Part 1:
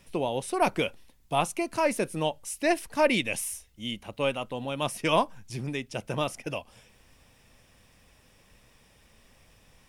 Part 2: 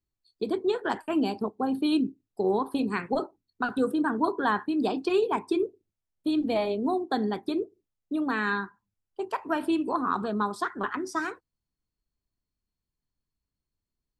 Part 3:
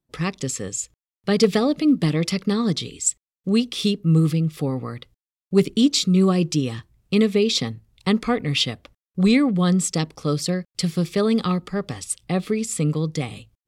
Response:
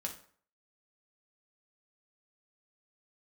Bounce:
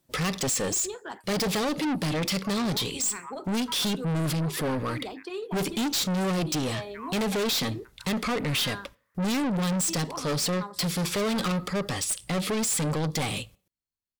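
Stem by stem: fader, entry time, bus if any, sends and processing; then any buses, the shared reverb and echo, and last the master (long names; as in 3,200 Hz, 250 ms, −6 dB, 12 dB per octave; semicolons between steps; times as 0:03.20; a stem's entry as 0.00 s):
−8.0 dB, 1.90 s, no send, elliptic band-pass filter 980–2,000 Hz; every ending faded ahead of time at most 350 dB per second
−8.5 dB, 0.20 s, no send, no processing
−3.5 dB, 0.00 s, send −18.5 dB, harmonic generator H 5 −8 dB, 6 −22 dB, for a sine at −5 dBFS; speech leveller within 5 dB 2 s; parametric band 560 Hz +4.5 dB 0.31 octaves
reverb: on, RT60 0.50 s, pre-delay 3 ms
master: spectral tilt +1.5 dB per octave; soft clipping −25 dBFS, distortion −5 dB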